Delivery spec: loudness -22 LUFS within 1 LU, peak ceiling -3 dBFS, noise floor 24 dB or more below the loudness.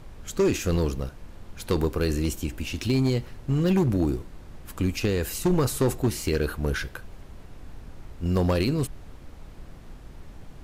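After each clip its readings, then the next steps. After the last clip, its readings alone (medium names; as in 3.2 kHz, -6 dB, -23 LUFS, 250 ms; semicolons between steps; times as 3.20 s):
clipped samples 1.5%; clipping level -16.5 dBFS; noise floor -45 dBFS; noise floor target -50 dBFS; loudness -26.0 LUFS; peak level -16.5 dBFS; loudness target -22.0 LUFS
-> clip repair -16.5 dBFS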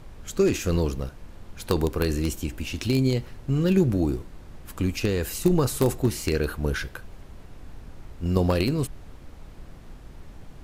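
clipped samples 0.0%; noise floor -45 dBFS; noise floor target -50 dBFS
-> noise print and reduce 6 dB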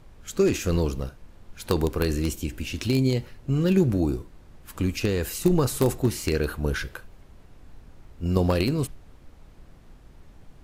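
noise floor -51 dBFS; loudness -25.5 LUFS; peak level -7.5 dBFS; loudness target -22.0 LUFS
-> trim +3.5 dB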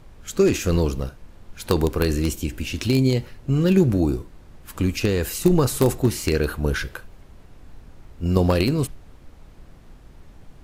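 loudness -22.0 LUFS; peak level -4.0 dBFS; noise floor -47 dBFS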